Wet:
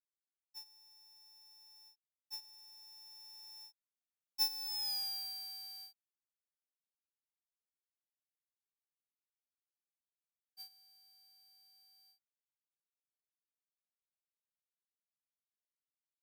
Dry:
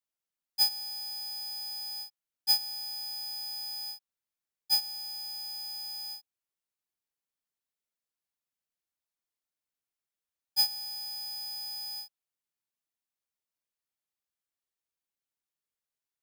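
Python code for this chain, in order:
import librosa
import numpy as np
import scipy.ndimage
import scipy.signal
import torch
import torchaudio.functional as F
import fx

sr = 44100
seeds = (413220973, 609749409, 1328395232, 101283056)

y = fx.doppler_pass(x, sr, speed_mps=23, closest_m=4.6, pass_at_s=4.9)
y = F.gain(torch.from_numpy(y), 2.0).numpy()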